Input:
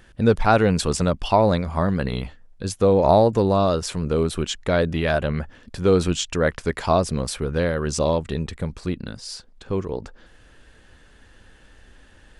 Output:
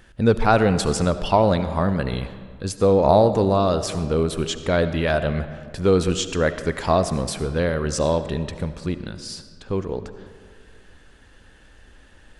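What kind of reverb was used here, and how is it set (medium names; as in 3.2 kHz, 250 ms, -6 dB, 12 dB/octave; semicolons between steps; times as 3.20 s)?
algorithmic reverb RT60 1.9 s, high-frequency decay 0.6×, pre-delay 35 ms, DRR 11 dB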